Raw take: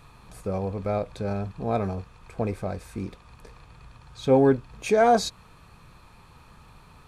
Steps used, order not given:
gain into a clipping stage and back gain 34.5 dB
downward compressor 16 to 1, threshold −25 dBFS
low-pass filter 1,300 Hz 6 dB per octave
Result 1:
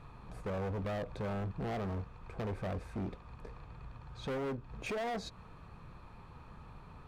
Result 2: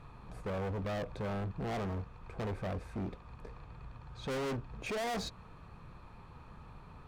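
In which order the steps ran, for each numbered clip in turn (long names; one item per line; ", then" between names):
downward compressor, then low-pass filter, then gain into a clipping stage and back
low-pass filter, then gain into a clipping stage and back, then downward compressor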